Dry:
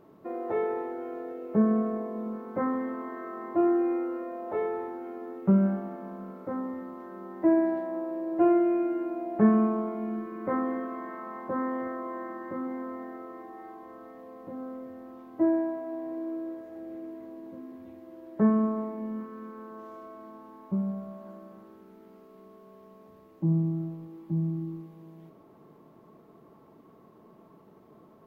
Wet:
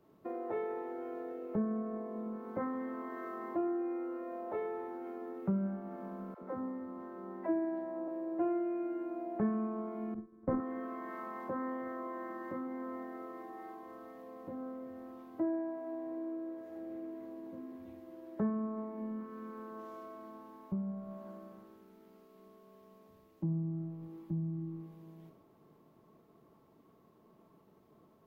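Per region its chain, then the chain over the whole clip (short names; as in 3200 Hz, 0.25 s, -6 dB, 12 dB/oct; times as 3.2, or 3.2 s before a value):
6.34–8.08 dispersion lows, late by 88 ms, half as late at 340 Hz + mismatched tape noise reduction decoder only
10.14–10.6 expander -25 dBFS + tilt -4 dB/oct + transient shaper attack +7 dB, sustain +1 dB
whole clip: compressor 3:1, threshold -40 dBFS; three-band expander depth 70%; gain +1 dB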